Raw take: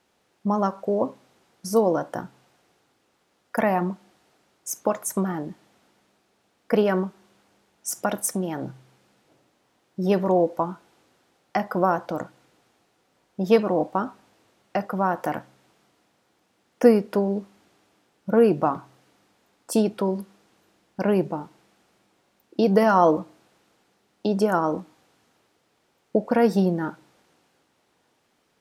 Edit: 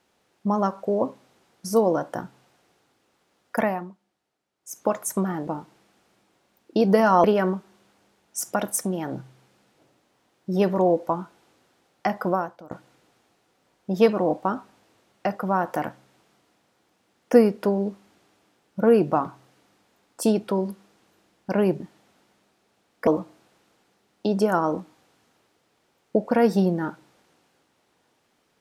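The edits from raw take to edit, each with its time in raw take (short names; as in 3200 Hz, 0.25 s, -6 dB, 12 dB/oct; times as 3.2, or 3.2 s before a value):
3.62–4.86 dip -17 dB, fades 0.36 s quadratic
5.47–6.74 swap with 21.3–23.07
11.77–12.21 fade out quadratic, to -17.5 dB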